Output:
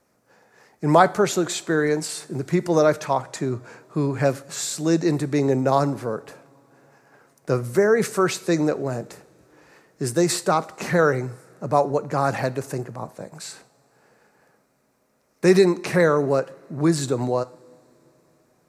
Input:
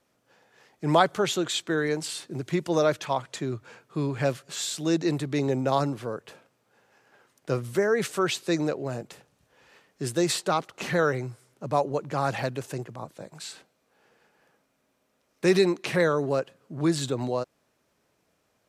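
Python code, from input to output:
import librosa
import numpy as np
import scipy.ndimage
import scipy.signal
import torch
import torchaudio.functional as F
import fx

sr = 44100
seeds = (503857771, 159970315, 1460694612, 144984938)

y = fx.peak_eq(x, sr, hz=3200.0, db=-11.5, octaves=0.64)
y = fx.rev_double_slope(y, sr, seeds[0], early_s=0.56, late_s=4.6, knee_db=-21, drr_db=15.0)
y = y * librosa.db_to_amplitude(5.5)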